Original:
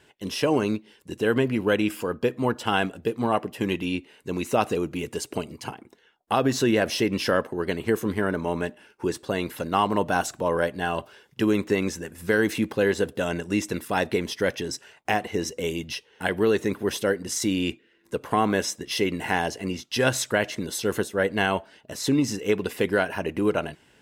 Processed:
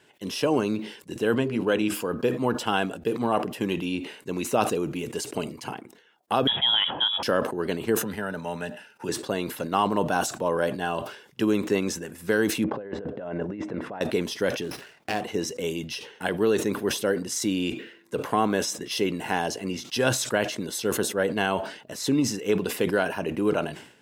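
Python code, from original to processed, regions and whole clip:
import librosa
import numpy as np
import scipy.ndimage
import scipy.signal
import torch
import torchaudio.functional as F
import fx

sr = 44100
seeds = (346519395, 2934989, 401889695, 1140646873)

y = fx.chain(x, sr, fx.lowpass(hz=10000.0, slope=12),
    fx.hum_notches(base_hz=50, count=8), at=(1.36, 1.94))
y = fx.chain(y, sr, fx.highpass(hz=170.0, slope=24),
    fx.freq_invert(carrier_hz=3600), at=(6.47, 7.23))
y = fx.chain(y, sr, fx.peak_eq(hz=340.0, db=-12.0, octaves=0.88),
    fx.notch_comb(f0_hz=1100.0),
    fx.band_squash(depth_pct=40), at=(7.97, 9.09))
y = fx.chain(y, sr, fx.lowpass(hz=1400.0, slope=12),
    fx.peak_eq(hz=620.0, db=5.5, octaves=0.54),
    fx.over_compress(threshold_db=-32.0, ratio=-1.0), at=(12.64, 14.01))
y = fx.chain(y, sr, fx.peak_eq(hz=880.0, db=-6.0, octaves=0.61),
    fx.running_max(window=5), at=(14.62, 15.21))
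y = scipy.signal.sosfilt(scipy.signal.butter(2, 120.0, 'highpass', fs=sr, output='sos'), y)
y = fx.dynamic_eq(y, sr, hz=2000.0, q=3.4, threshold_db=-45.0, ratio=4.0, max_db=-6)
y = fx.sustainer(y, sr, db_per_s=95.0)
y = y * librosa.db_to_amplitude(-1.0)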